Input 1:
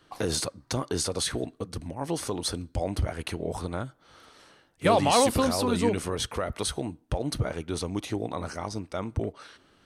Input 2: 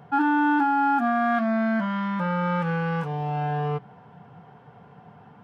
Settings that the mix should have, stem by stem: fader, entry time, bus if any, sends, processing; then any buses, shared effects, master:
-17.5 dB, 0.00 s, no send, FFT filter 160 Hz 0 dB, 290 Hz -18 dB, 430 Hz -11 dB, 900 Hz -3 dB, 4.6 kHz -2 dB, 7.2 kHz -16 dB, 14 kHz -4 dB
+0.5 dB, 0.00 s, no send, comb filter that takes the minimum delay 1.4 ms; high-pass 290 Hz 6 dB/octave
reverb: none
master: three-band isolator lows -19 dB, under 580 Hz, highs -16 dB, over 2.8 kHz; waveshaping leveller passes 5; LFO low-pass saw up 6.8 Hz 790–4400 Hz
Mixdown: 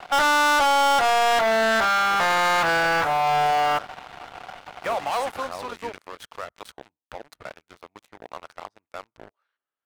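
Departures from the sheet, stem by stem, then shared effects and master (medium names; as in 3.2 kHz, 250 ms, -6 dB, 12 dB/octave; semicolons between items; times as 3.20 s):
stem 1: missing FFT filter 160 Hz 0 dB, 290 Hz -18 dB, 430 Hz -11 dB, 900 Hz -3 dB, 4.6 kHz -2 dB, 7.2 kHz -16 dB, 14 kHz -4 dB; master: missing LFO low-pass saw up 6.8 Hz 790–4400 Hz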